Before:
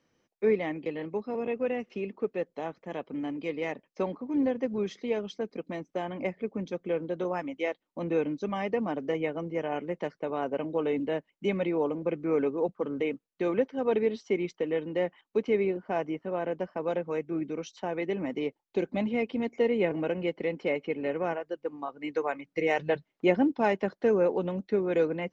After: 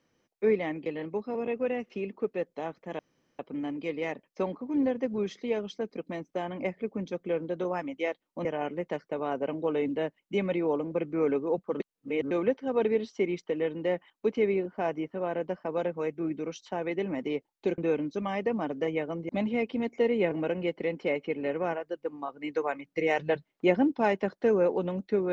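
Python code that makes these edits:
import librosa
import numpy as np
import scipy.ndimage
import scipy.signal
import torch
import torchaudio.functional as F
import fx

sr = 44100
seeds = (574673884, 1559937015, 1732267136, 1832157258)

y = fx.edit(x, sr, fx.insert_room_tone(at_s=2.99, length_s=0.4),
    fx.move(start_s=8.05, length_s=1.51, to_s=18.89),
    fx.reverse_span(start_s=12.91, length_s=0.51), tone=tone)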